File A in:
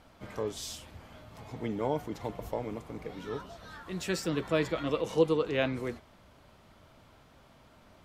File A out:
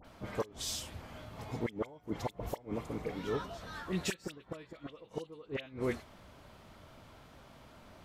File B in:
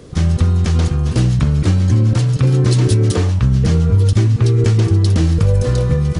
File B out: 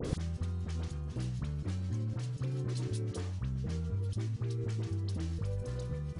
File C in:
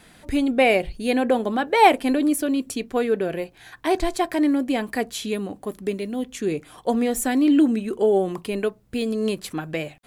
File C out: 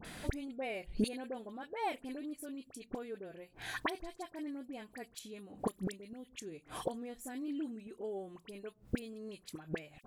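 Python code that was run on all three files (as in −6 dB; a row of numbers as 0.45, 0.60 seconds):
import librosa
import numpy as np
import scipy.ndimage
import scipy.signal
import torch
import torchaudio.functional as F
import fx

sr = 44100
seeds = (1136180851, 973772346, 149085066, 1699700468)

y = fx.gate_flip(x, sr, shuts_db=-22.0, range_db=-25)
y = fx.dispersion(y, sr, late='highs', ms=48.0, hz=1800.0)
y = F.gain(torch.from_numpy(y), 2.5).numpy()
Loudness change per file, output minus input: −7.0, −22.5, −20.0 LU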